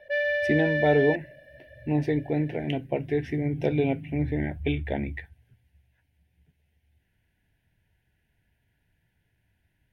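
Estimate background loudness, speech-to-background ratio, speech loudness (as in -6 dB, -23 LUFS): -27.0 LUFS, -0.5 dB, -27.5 LUFS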